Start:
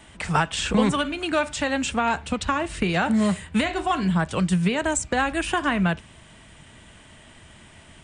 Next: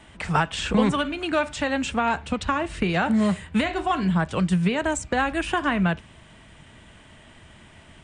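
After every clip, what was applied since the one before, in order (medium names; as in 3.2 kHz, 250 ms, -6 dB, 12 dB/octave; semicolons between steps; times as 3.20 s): treble shelf 6.2 kHz -9 dB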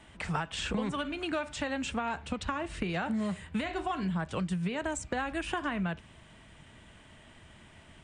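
compression 4:1, threshold -24 dBFS, peak gain reduction 8.5 dB; trim -5.5 dB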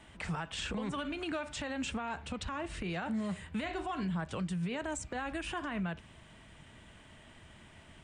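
peak limiter -27.5 dBFS, peak gain reduction 10.5 dB; trim -1 dB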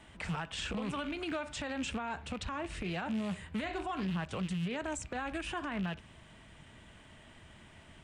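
rattle on loud lows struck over -43 dBFS, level -37 dBFS; loudspeaker Doppler distortion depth 0.19 ms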